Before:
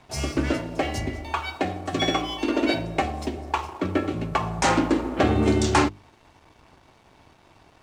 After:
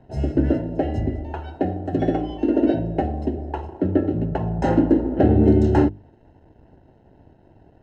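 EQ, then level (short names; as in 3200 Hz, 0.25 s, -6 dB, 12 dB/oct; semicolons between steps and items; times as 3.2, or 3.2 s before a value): running mean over 38 samples; +6.5 dB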